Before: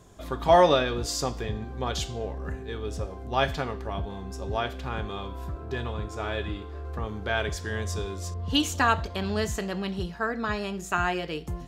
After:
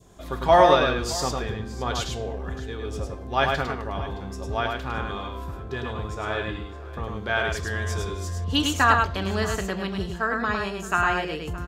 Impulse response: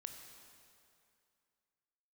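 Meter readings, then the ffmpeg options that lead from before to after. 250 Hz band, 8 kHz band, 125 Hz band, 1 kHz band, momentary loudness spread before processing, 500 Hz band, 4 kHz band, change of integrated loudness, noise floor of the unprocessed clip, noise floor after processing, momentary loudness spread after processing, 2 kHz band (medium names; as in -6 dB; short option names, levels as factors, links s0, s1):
+1.5 dB, +1.5 dB, +2.0 dB, +4.5 dB, 12 LU, +2.5 dB, +2.0 dB, +3.5 dB, -40 dBFS, -38 dBFS, 14 LU, +5.5 dB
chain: -af "aecho=1:1:104|618:0.631|0.133,adynamicequalizer=threshold=0.0141:dfrequency=1400:dqfactor=1.1:tfrequency=1400:tqfactor=1.1:attack=5:release=100:ratio=0.375:range=2.5:mode=boostabove:tftype=bell"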